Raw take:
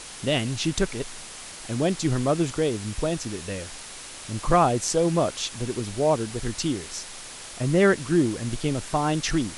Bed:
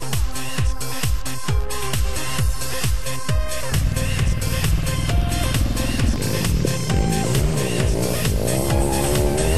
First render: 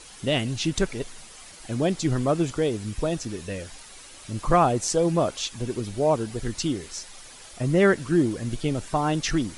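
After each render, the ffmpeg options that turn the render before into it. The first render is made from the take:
-af "afftdn=nr=9:nf=-41"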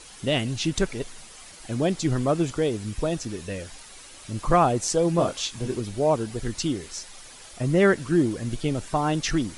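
-filter_complex "[0:a]asettb=1/sr,asplit=3[a][b][c];[a]atrim=end=5.164[d];[b]atrim=start=5.16:end=5.79,asetpts=PTS-STARTPTS,afade=t=in:d=0.004:c=qsin,afade=t=out:st=0.626:d=0.004:c=qsin,asplit=2[e][f];[f]adelay=23,volume=-6dB[g];[e][g]amix=inputs=2:normalize=0,atrim=end_sample=27783[h];[c]atrim=start=5.786[i];[d][h]acrossfade=d=0.004:c1=hsin:c2=qsin[j];[j][i]acrossfade=d=0.004:c1=qsin:c2=hsin"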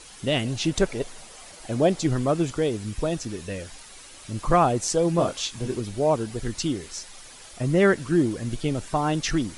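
-filter_complex "[0:a]asettb=1/sr,asplit=3[a][b][c];[a]atrim=end=0.444[d];[b]atrim=start=0.44:end=2.07,asetpts=PTS-STARTPTS,afade=t=in:d=0.004:c=qsin,afade=t=out:st=1.626:d=0.004:c=qsin,equalizer=f=610:w=1.2:g=6.5[e];[c]atrim=start=2.066[f];[d][e]acrossfade=d=0.004:c1=hsin:c2=qsin[g];[g][f]acrossfade=d=0.004:c1=qsin:c2=hsin"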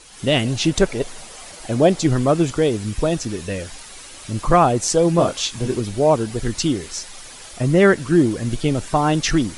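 -af "dynaudnorm=f=110:g=3:m=6.5dB"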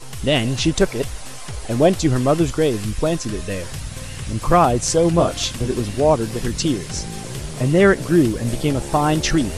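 -filter_complex "[1:a]volume=-11dB[a];[0:a][a]amix=inputs=2:normalize=0"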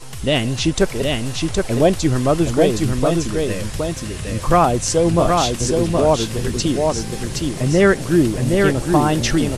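-af "aecho=1:1:768:0.668"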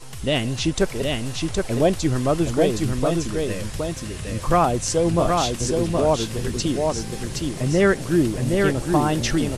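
-af "volume=-4dB"

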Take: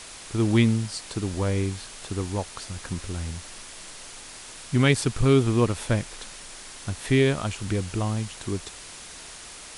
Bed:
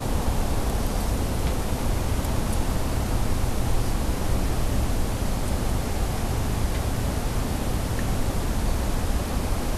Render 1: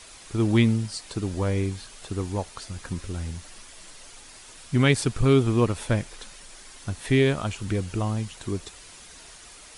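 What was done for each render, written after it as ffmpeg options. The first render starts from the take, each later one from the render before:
-af "afftdn=nr=7:nf=-43"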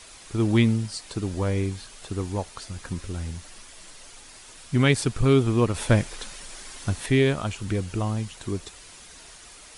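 -filter_complex "[0:a]asettb=1/sr,asplit=3[a][b][c];[a]atrim=end=5.744[d];[b]atrim=start=5.74:end=7.06,asetpts=PTS-STARTPTS,afade=t=in:d=0.004:c=qsin,afade=t=out:st=1.316:d=0.004:c=qsin,acontrast=22[e];[c]atrim=start=7.056[f];[d][e]acrossfade=d=0.004:c1=hsin:c2=qsin[g];[g][f]acrossfade=d=0.004:c1=qsin:c2=hsin"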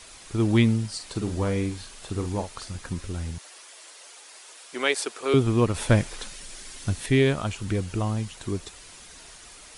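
-filter_complex "[0:a]asettb=1/sr,asplit=3[a][b][c];[a]atrim=end=0.954[d];[b]atrim=start=0.95:end=2.76,asetpts=PTS-STARTPTS,afade=t=in:d=0.004:c=qsin,afade=t=out:st=1.806:d=0.004:c=qsin,asplit=2[e][f];[f]adelay=45,volume=-8dB[g];[e][g]amix=inputs=2:normalize=0,atrim=end_sample=79821[h];[c]atrim=start=2.756[i];[d][h]acrossfade=d=0.004:c1=hsin:c2=qsin[j];[j][i]acrossfade=d=0.004:c1=qsin:c2=hsin,asettb=1/sr,asplit=3[k][l][m];[k]atrim=end=3.384[n];[l]atrim=start=3.38:end=5.34,asetpts=PTS-STARTPTS,afade=t=in:d=0.004:c=qsin,afade=t=out:st=1.956:d=0.004:c=qsin,highpass=f=390:w=0.5412,highpass=f=390:w=1.3066[o];[m]atrim=start=5.336[p];[n][o]acrossfade=d=0.004:c1=hsin:c2=qsin[q];[q][p]acrossfade=d=0.004:c1=qsin:c2=hsin,asettb=1/sr,asplit=3[r][s][t];[r]atrim=end=6.284[u];[s]atrim=start=6.28:end=7.12,asetpts=PTS-STARTPTS,afade=t=in:d=0.004:c=qsin,afade=t=out:st=0.836:d=0.004:c=qsin,equalizer=f=940:w=0.8:g=-5[v];[t]atrim=start=7.116[w];[u][v]acrossfade=d=0.004:c1=hsin:c2=qsin[x];[x][w]acrossfade=d=0.004:c1=qsin:c2=hsin"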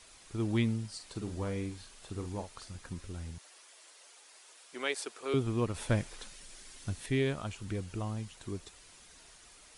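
-af "volume=-10dB"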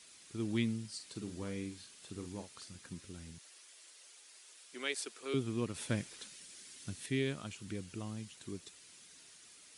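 -af "highpass=160,equalizer=f=790:w=0.69:g=-10"

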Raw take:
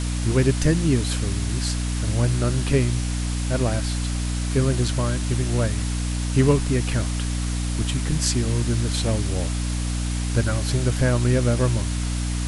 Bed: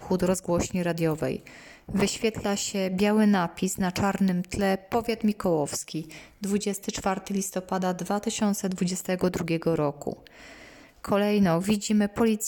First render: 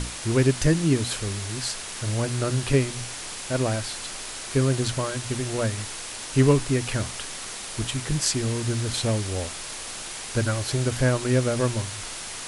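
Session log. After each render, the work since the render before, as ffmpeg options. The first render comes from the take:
-af "bandreject=f=60:t=h:w=6,bandreject=f=120:t=h:w=6,bandreject=f=180:t=h:w=6,bandreject=f=240:t=h:w=6,bandreject=f=300:t=h:w=6"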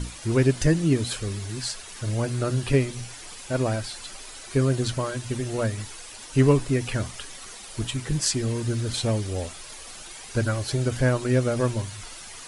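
-af "afftdn=nr=10:nf=-36"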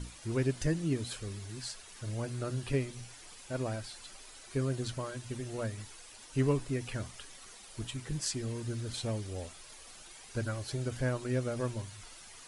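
-af "volume=-10.5dB"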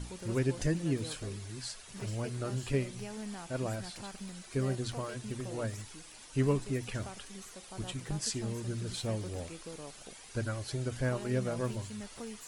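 -filter_complex "[1:a]volume=-21dB[a];[0:a][a]amix=inputs=2:normalize=0"

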